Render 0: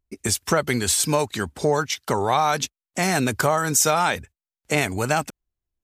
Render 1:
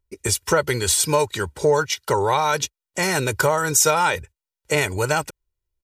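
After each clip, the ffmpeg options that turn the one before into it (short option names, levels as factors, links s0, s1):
-af "aecho=1:1:2.1:0.69"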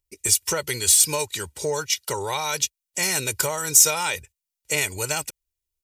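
-af "aexciter=amount=2.9:drive=5.8:freq=2100,volume=0.376"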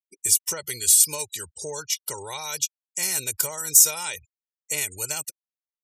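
-af "afftfilt=real='re*gte(hypot(re,im),0.0178)':imag='im*gte(hypot(re,im),0.0178)':win_size=1024:overlap=0.75,crystalizer=i=2:c=0,volume=0.355"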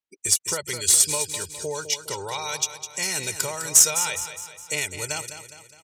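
-af "adynamicsmooth=sensitivity=0.5:basefreq=6600,aecho=1:1:206|412|618|824|1030:0.299|0.146|0.0717|0.0351|0.0172,volume=1.58"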